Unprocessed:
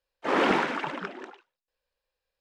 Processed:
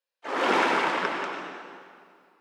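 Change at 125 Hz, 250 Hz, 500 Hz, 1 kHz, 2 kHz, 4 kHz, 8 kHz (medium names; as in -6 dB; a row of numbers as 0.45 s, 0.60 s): -4.5 dB, -2.0 dB, +0.5 dB, +3.5 dB, +3.5 dB, +3.5 dB, +5.5 dB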